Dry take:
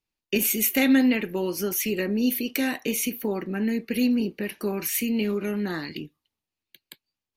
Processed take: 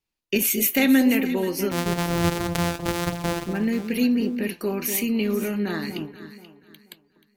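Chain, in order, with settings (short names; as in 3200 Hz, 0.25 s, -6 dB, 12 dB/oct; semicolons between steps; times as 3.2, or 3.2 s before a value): 1.71–3.46 sample sorter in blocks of 256 samples; vibrato 1.7 Hz 12 cents; echo with dull and thin repeats by turns 0.241 s, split 1000 Hz, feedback 52%, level -8 dB; gain +1.5 dB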